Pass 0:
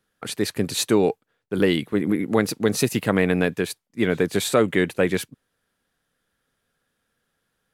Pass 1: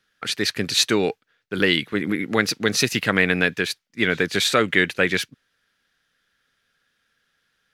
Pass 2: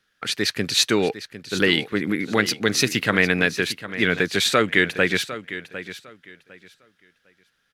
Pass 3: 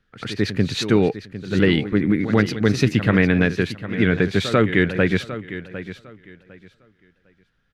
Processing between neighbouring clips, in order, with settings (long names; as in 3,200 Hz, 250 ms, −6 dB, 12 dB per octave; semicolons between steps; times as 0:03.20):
flat-topped bell 2,900 Hz +10.5 dB 2.5 octaves; level −2.5 dB
repeating echo 754 ms, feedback 22%, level −13.5 dB
RIAA equalisation playback; echo ahead of the sound 92 ms −12.5 dB; level −1 dB